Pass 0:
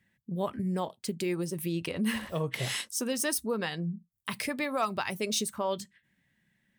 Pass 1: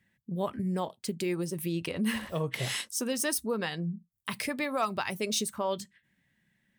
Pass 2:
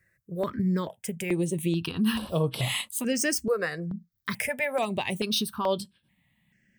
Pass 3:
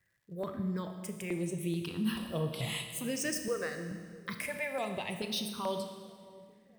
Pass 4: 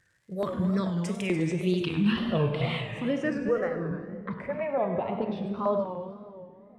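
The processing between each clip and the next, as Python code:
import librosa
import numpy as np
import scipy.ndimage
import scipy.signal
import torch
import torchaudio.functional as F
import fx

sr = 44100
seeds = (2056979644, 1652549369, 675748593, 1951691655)

y1 = x
y2 = fx.phaser_held(y1, sr, hz=2.3, low_hz=870.0, high_hz=6700.0)
y2 = y2 * 10.0 ** (6.5 / 20.0)
y3 = fx.dmg_crackle(y2, sr, seeds[0], per_s=190.0, level_db=-56.0)
y3 = fx.echo_wet_lowpass(y3, sr, ms=643, feedback_pct=51, hz=550.0, wet_db=-18.5)
y3 = fx.rev_schroeder(y3, sr, rt60_s=1.7, comb_ms=26, drr_db=6.0)
y3 = y3 * 10.0 ** (-8.5 / 20.0)
y4 = fx.filter_sweep_lowpass(y3, sr, from_hz=9100.0, to_hz=920.0, start_s=0.4, end_s=3.88, q=1.0)
y4 = fx.echo_multitap(y4, sr, ms=(98, 208, 301), db=(-12.0, -12.0, -12.5))
y4 = fx.wow_flutter(y4, sr, seeds[1], rate_hz=2.1, depth_cents=120.0)
y4 = y4 * 10.0 ** (7.5 / 20.0)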